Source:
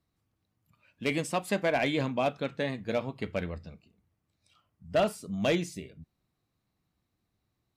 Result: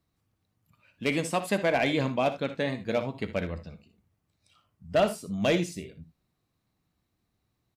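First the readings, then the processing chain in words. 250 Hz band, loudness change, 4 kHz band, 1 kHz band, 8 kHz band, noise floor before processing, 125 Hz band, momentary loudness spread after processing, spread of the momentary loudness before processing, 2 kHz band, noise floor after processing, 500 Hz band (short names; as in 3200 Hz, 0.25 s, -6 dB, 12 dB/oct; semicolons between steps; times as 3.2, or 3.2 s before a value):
+2.5 dB, +2.5 dB, +2.0 dB, +2.0 dB, +2.5 dB, -81 dBFS, +2.0 dB, 10 LU, 11 LU, +2.0 dB, -78 dBFS, +2.5 dB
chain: early reflections 60 ms -13.5 dB, 78 ms -16.5 dB; gain +2 dB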